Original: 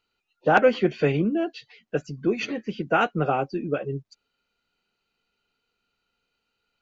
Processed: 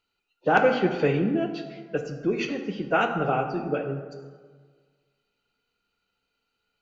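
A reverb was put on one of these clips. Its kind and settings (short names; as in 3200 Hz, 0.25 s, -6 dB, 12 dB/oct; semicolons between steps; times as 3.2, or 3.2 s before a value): plate-style reverb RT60 1.6 s, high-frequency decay 0.5×, DRR 5 dB; gain -2 dB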